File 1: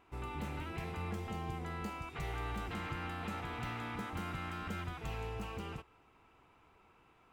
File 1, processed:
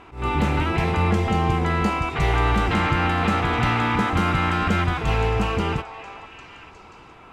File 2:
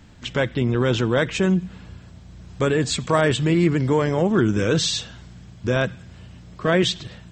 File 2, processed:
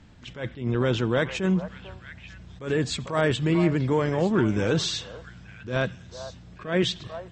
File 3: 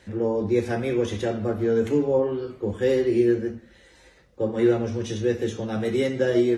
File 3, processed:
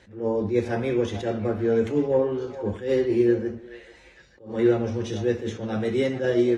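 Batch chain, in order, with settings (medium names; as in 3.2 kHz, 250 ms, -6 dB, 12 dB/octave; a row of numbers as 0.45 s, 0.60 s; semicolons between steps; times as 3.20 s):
distance through air 51 m; repeats whose band climbs or falls 445 ms, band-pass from 810 Hz, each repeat 1.4 oct, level -8.5 dB; attacks held to a fixed rise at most 150 dB/s; peak normalisation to -9 dBFS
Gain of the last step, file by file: +20.0 dB, -3.5 dB, 0.0 dB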